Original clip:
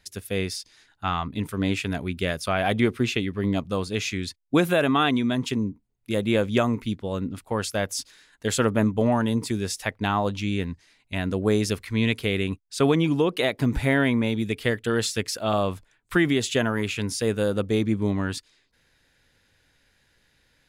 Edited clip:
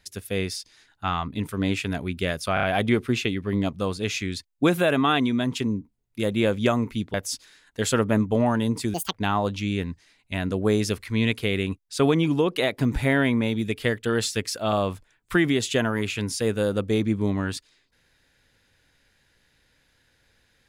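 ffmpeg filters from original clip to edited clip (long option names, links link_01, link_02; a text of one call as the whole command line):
ffmpeg -i in.wav -filter_complex "[0:a]asplit=7[link_01][link_02][link_03][link_04][link_05][link_06][link_07];[link_01]atrim=end=2.572[link_08];[link_02]atrim=start=2.538:end=2.572[link_09];[link_03]atrim=start=2.538:end=2.572[link_10];[link_04]atrim=start=2.538:end=7.052[link_11];[link_05]atrim=start=7.798:end=9.604[link_12];[link_06]atrim=start=9.6:end=9.94,asetpts=PTS-STARTPTS,asetrate=77616,aresample=44100,atrim=end_sample=8519,asetpts=PTS-STARTPTS[link_13];[link_07]atrim=start=9.936[link_14];[link_08][link_09]acrossfade=duration=0.004:curve1=hsin:curve2=hsin[link_15];[link_15][link_10]acrossfade=duration=0.004:curve1=hsin:curve2=hsin[link_16];[link_16][link_11]acrossfade=duration=0.004:curve1=hsin:curve2=hsin[link_17];[link_17][link_12]acrossfade=duration=0.004:curve1=hsin:curve2=hsin[link_18];[link_18][link_13]acrossfade=duration=0.004:curve1=hsin:curve2=hsin[link_19];[link_19][link_14]acrossfade=duration=0.004:curve1=hsin:curve2=hsin" out.wav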